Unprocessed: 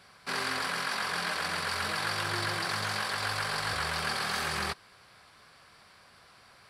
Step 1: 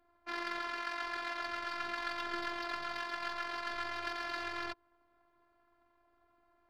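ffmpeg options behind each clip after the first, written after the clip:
ffmpeg -i in.wav -af "adynamicsmooth=sensitivity=5:basefreq=730,afftfilt=real='hypot(re,im)*cos(PI*b)':imag='0':win_size=512:overlap=0.75,highshelf=frequency=6300:width_type=q:width=1.5:gain=-8,volume=-2.5dB" out.wav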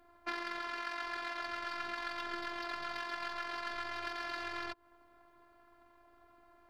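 ffmpeg -i in.wav -af "acompressor=threshold=-42dB:ratio=12,volume=8dB" out.wav

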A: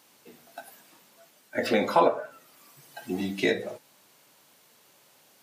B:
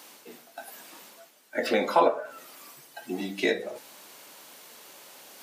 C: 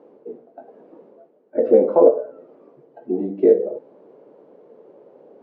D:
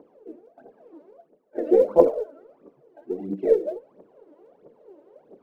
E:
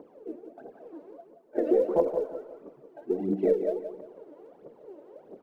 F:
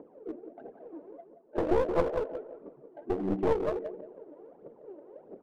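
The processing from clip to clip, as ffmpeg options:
ffmpeg -i in.wav -af "highpass=240,areverse,acompressor=mode=upward:threshold=-38dB:ratio=2.5,areverse" out.wav
ffmpeg -i in.wav -af "lowpass=frequency=460:width_type=q:width=3.5,volume=4.5dB" out.wav
ffmpeg -i in.wav -af "aphaser=in_gain=1:out_gain=1:delay=3.5:decay=0.77:speed=1.5:type=triangular,volume=-7.5dB" out.wav
ffmpeg -i in.wav -af "acompressor=threshold=-24dB:ratio=4,aecho=1:1:175|350|525|700:0.335|0.114|0.0387|0.0132,volume=2.5dB" out.wav
ffmpeg -i in.wav -af "adynamicsmooth=sensitivity=6.5:basefreq=1500,aeval=exprs='clip(val(0),-1,0.0282)':channel_layout=same" out.wav

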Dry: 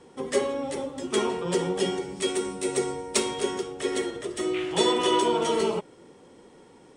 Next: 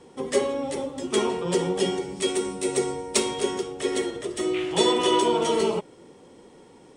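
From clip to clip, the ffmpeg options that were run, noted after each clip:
ffmpeg -i in.wav -af "equalizer=frequency=1500:width_type=o:width=0.77:gain=-3,volume=2dB" out.wav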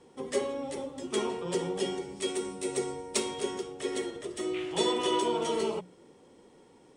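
ffmpeg -i in.wav -af "bandreject=frequency=60:width_type=h:width=6,bandreject=frequency=120:width_type=h:width=6,bandreject=frequency=180:width_type=h:width=6,volume=-7dB" out.wav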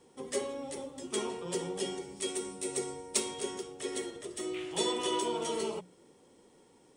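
ffmpeg -i in.wav -af "highshelf=frequency=6200:gain=10,volume=-4.5dB" out.wav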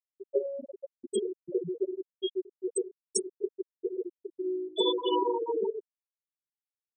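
ffmpeg -i in.wav -af "afftfilt=real='re*gte(hypot(re,im),0.1)':imag='im*gte(hypot(re,im),0.1)':win_size=1024:overlap=0.75,volume=6.5dB" out.wav

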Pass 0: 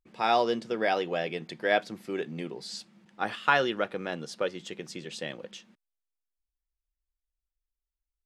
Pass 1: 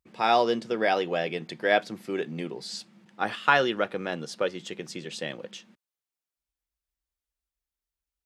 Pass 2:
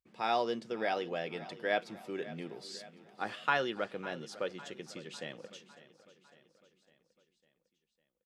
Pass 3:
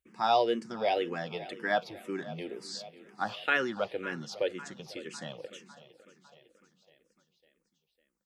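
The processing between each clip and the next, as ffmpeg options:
ffmpeg -i in.wav -af "highpass=54,volume=2.5dB" out.wav
ffmpeg -i in.wav -af "aecho=1:1:553|1106|1659|2212|2765:0.141|0.0777|0.0427|0.0235|0.0129,volume=-9dB" out.wav
ffmpeg -i in.wav -filter_complex "[0:a]asplit=2[link_01][link_02];[link_02]afreqshift=-2[link_03];[link_01][link_03]amix=inputs=2:normalize=1,volume=6.5dB" out.wav

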